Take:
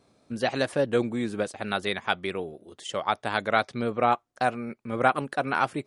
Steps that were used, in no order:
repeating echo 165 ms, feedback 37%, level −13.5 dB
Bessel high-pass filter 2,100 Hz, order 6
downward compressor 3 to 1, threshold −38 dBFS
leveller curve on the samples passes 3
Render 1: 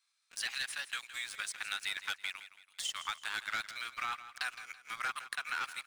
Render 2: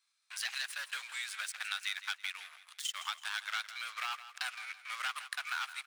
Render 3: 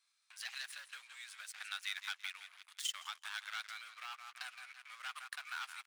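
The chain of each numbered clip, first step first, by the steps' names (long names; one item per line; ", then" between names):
Bessel high-pass filter, then leveller curve on the samples, then downward compressor, then repeating echo
leveller curve on the samples, then Bessel high-pass filter, then downward compressor, then repeating echo
repeating echo, then leveller curve on the samples, then downward compressor, then Bessel high-pass filter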